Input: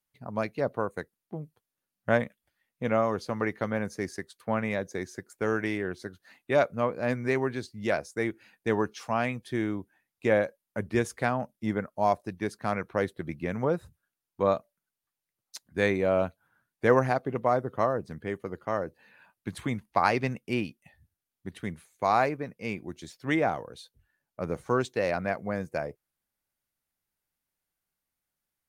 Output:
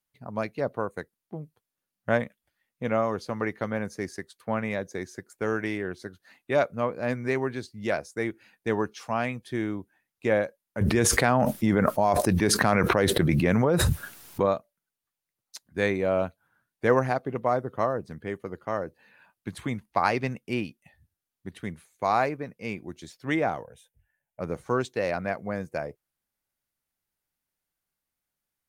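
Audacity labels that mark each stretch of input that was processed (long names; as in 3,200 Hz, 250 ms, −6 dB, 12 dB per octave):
10.810000	14.460000	envelope flattener amount 100%
23.640000	24.400000	phaser with its sweep stopped centre 1,200 Hz, stages 6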